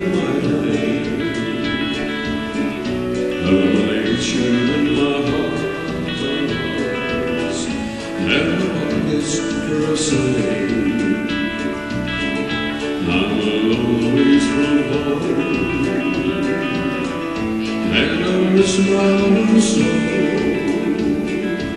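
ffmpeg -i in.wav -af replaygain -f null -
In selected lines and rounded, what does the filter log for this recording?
track_gain = -1.1 dB
track_peak = 0.581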